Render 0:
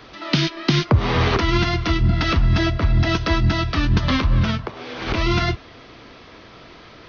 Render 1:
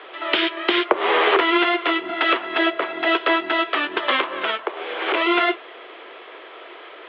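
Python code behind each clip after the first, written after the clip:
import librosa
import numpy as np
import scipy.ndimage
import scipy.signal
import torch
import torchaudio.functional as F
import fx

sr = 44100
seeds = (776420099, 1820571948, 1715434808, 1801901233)

y = scipy.signal.sosfilt(scipy.signal.cheby1(4, 1.0, [360.0, 3300.0], 'bandpass', fs=sr, output='sos'), x)
y = y * librosa.db_to_amplitude(5.5)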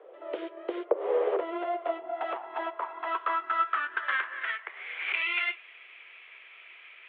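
y = fx.filter_sweep_bandpass(x, sr, from_hz=510.0, to_hz=2400.0, start_s=1.23, end_s=5.17, q=5.7)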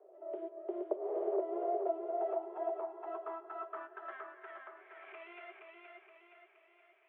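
y = fx.double_bandpass(x, sr, hz=500.0, octaves=0.72)
y = fx.echo_feedback(y, sr, ms=471, feedback_pct=49, wet_db=-4)
y = y * librosa.db_to_amplitude(-1.5)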